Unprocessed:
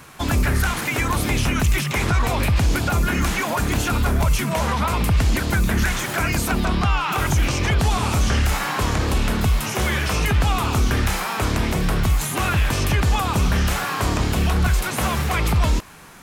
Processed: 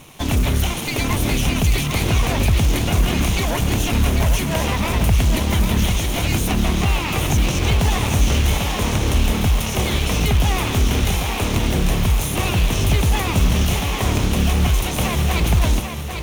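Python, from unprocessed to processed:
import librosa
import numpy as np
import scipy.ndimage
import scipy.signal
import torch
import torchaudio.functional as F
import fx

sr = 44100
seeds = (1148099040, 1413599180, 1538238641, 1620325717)

p1 = fx.lower_of_two(x, sr, delay_ms=0.32)
p2 = fx.quant_companded(p1, sr, bits=4)
p3 = p1 + (p2 * 10.0 ** (-5.0 / 20.0))
p4 = p3 + 10.0 ** (-6.5 / 20.0) * np.pad(p3, (int(794 * sr / 1000.0), 0))[:len(p3)]
y = p4 * 10.0 ** (-2.5 / 20.0)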